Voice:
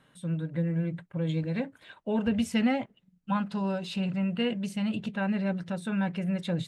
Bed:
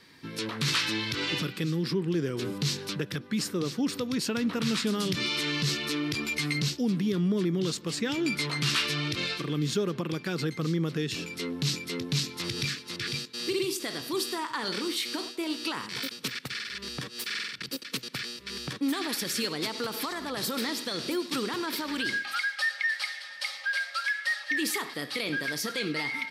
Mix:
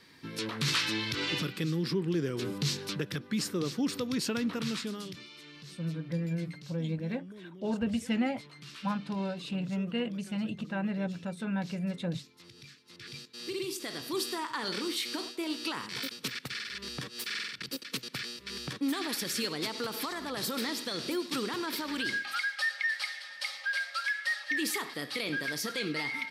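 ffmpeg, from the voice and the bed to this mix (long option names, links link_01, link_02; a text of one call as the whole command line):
ffmpeg -i stem1.wav -i stem2.wav -filter_complex "[0:a]adelay=5550,volume=-4dB[link_01];[1:a]volume=16.5dB,afade=type=out:start_time=4.32:duration=0.94:silence=0.112202,afade=type=in:start_time=12.78:duration=1.41:silence=0.11885[link_02];[link_01][link_02]amix=inputs=2:normalize=0" out.wav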